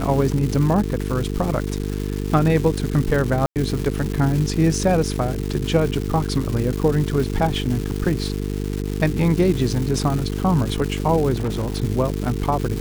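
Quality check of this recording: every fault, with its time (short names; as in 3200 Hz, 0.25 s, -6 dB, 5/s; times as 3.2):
buzz 50 Hz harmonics 9 -25 dBFS
crackle 480/s -25 dBFS
3.46–3.56 gap 98 ms
11.34–11.76 clipped -19 dBFS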